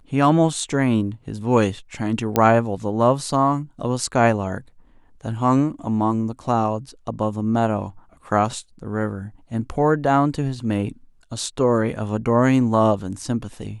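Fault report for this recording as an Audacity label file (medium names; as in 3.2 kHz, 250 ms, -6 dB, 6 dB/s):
2.360000	2.360000	pop -4 dBFS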